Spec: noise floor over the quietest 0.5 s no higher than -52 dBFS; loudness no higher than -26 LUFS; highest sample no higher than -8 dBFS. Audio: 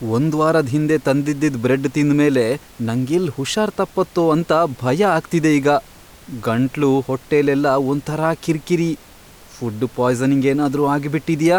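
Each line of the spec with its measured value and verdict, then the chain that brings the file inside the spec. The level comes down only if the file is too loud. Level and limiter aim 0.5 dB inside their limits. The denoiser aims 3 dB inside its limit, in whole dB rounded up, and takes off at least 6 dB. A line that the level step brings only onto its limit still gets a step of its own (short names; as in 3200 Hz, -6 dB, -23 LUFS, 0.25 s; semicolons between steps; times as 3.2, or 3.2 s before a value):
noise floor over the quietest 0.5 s -44 dBFS: fail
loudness -18.5 LUFS: fail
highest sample -5.5 dBFS: fail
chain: denoiser 6 dB, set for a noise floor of -44 dBFS; gain -8 dB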